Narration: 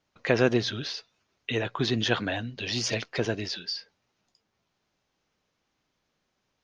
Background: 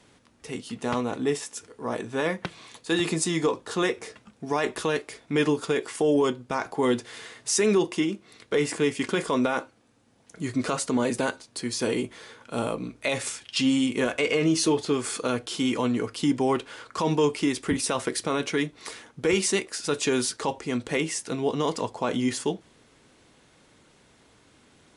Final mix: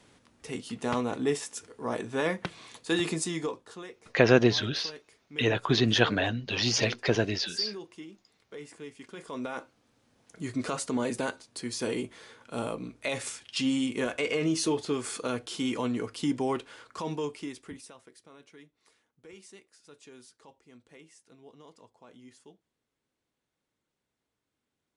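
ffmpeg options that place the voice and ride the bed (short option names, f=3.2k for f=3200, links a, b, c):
-filter_complex "[0:a]adelay=3900,volume=2.5dB[a];[1:a]volume=12.5dB,afade=t=out:st=2.87:d=0.97:silence=0.133352,afade=t=in:st=9.12:d=0.92:silence=0.188365,afade=t=out:st=16.38:d=1.6:silence=0.0794328[b];[a][b]amix=inputs=2:normalize=0"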